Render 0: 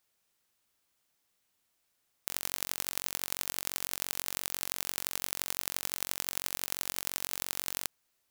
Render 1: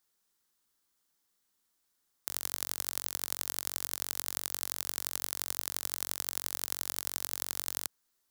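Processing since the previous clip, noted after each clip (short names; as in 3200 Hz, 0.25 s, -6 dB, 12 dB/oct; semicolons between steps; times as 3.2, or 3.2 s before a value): fifteen-band EQ 100 Hz -11 dB, 630 Hz -7 dB, 2500 Hz -8 dB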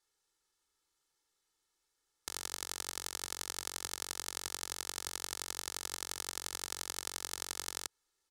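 LPF 8700 Hz 12 dB/oct; comb 2.3 ms, depth 74%; gain -2 dB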